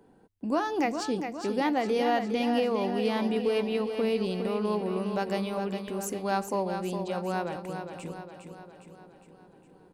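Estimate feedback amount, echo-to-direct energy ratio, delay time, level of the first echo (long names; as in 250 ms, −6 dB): 55%, −6.0 dB, 409 ms, −7.5 dB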